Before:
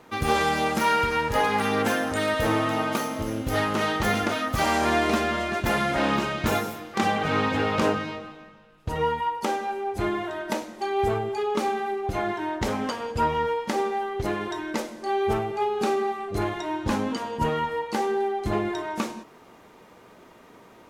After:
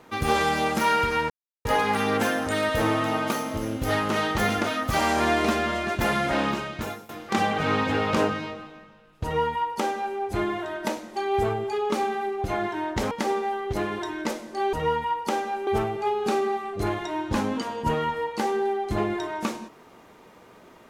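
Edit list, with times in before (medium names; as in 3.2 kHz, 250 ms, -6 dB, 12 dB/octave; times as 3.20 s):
1.30 s: insert silence 0.35 s
5.95–6.74 s: fade out, to -17.5 dB
8.89–9.83 s: copy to 15.22 s
12.76–13.60 s: delete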